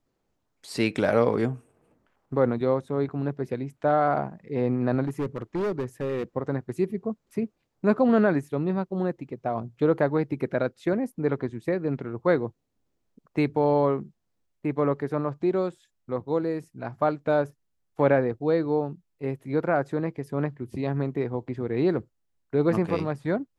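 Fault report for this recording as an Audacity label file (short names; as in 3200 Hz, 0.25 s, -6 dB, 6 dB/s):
5.070000	6.240000	clipped -24 dBFS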